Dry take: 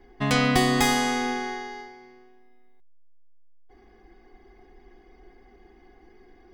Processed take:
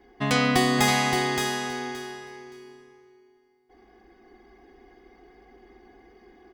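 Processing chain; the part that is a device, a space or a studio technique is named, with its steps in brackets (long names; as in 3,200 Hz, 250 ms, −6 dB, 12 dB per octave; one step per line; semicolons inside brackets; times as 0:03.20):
high-pass filter 110 Hz 6 dB per octave
repeating echo 571 ms, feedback 18%, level −5 dB
compressed reverb return (on a send at −5.5 dB: convolution reverb RT60 2.1 s, pre-delay 3 ms + downward compressor, threshold −39 dBFS, peak gain reduction 20 dB)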